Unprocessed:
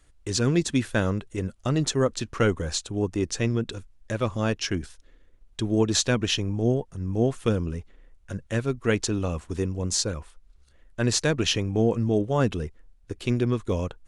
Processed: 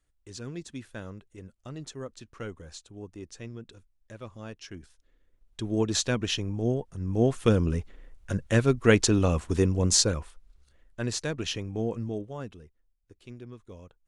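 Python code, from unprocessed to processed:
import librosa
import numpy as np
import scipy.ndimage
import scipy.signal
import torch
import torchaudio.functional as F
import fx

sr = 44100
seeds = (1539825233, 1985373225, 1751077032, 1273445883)

y = fx.gain(x, sr, db=fx.line((4.65, -16.0), (5.8, -4.0), (6.77, -4.0), (7.75, 4.0), (9.96, 4.0), (11.16, -8.0), (12.02, -8.0), (12.64, -20.0)))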